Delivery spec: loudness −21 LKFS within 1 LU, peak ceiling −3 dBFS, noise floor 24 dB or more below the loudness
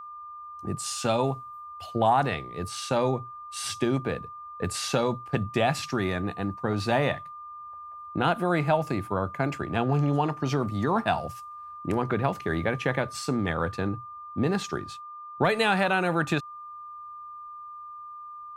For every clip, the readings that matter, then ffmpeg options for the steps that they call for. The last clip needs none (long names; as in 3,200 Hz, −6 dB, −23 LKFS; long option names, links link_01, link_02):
interfering tone 1,200 Hz; level of the tone −39 dBFS; integrated loudness −27.5 LKFS; sample peak −10.0 dBFS; target loudness −21.0 LKFS
→ -af "bandreject=frequency=1200:width=30"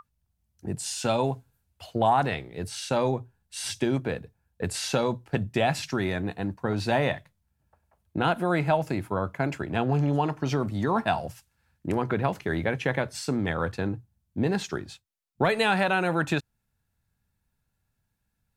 interfering tone none found; integrated loudness −27.5 LKFS; sample peak −10.0 dBFS; target loudness −21.0 LKFS
→ -af "volume=6.5dB"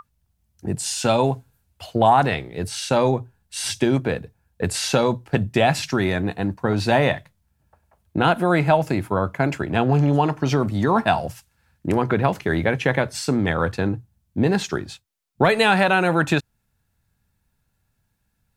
integrated loudness −21.0 LKFS; sample peak −3.5 dBFS; background noise floor −71 dBFS